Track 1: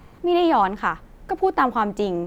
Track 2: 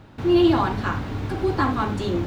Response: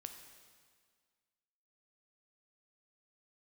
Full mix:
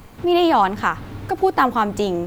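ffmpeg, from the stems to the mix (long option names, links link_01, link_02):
-filter_complex "[0:a]highshelf=frequency=4400:gain=11,volume=2dB,asplit=2[link_01][link_02];[1:a]volume=-4.5dB[link_03];[link_02]apad=whole_len=99942[link_04];[link_03][link_04]sidechaincompress=threshold=-29dB:ratio=8:attack=44:release=112[link_05];[link_01][link_05]amix=inputs=2:normalize=0"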